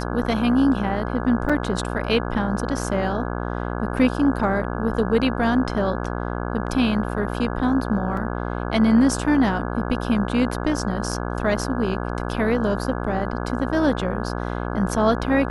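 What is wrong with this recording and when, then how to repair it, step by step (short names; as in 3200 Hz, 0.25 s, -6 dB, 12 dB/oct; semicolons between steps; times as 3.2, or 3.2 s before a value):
buzz 60 Hz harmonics 28 -27 dBFS
1.49–1.5 gap 5.3 ms
8.17 gap 2.7 ms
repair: de-hum 60 Hz, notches 28; interpolate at 1.49, 5.3 ms; interpolate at 8.17, 2.7 ms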